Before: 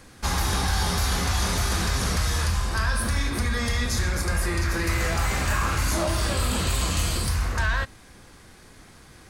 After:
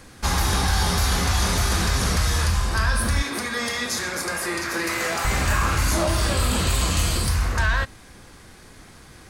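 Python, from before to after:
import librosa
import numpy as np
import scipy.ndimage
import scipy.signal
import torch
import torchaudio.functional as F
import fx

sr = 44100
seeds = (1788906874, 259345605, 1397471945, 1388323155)

y = fx.highpass(x, sr, hz=270.0, slope=12, at=(3.22, 5.25))
y = y * librosa.db_to_amplitude(3.0)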